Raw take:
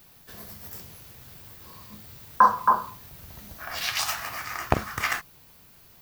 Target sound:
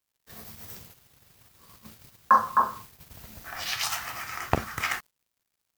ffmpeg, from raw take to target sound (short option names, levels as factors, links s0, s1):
-af "acrusher=bits=6:mix=0:aa=0.5,asetrate=45938,aresample=44100,agate=range=0.398:threshold=0.00562:ratio=16:detection=peak,volume=0.794"